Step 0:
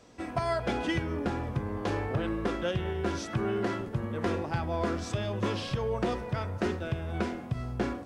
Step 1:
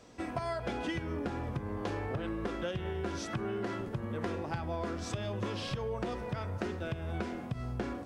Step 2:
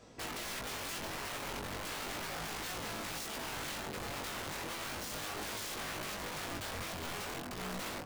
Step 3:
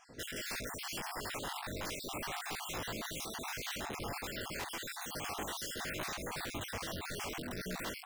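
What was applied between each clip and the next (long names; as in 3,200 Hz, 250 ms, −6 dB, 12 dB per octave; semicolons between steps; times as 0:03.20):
downward compressor, threshold −32 dBFS, peak gain reduction 8 dB
wrap-around overflow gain 35.5 dB; chorus effect 0.35 Hz, delay 19 ms, depth 2.6 ms; level +2.5 dB
time-frequency cells dropped at random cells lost 46%; level +2.5 dB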